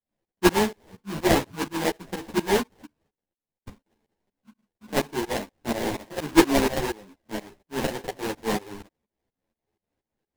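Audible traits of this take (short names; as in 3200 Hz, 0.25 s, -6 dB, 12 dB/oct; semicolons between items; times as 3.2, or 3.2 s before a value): a buzz of ramps at a fixed pitch in blocks of 8 samples; tremolo saw up 4.2 Hz, depth 95%; aliases and images of a low sample rate 1300 Hz, jitter 20%; a shimmering, thickened sound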